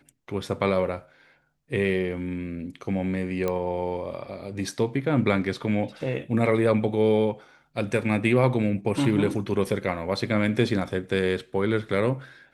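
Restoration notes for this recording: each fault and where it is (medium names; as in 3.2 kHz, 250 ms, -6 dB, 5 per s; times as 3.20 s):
3.48 s: pop -14 dBFS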